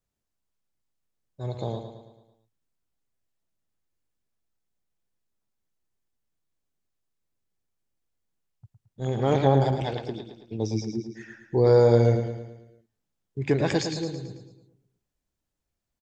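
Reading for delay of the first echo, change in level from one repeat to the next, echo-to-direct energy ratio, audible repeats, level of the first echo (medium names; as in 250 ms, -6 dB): 110 ms, -6.0 dB, -6.5 dB, 5, -8.0 dB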